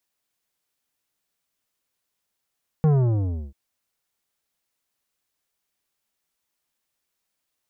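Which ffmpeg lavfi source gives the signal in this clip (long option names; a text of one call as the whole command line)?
ffmpeg -f lavfi -i "aevalsrc='0.168*clip((0.69-t)/0.69,0,1)*tanh(3.76*sin(2*PI*160*0.69/log(65/160)*(exp(log(65/160)*t/0.69)-1)))/tanh(3.76)':duration=0.69:sample_rate=44100" out.wav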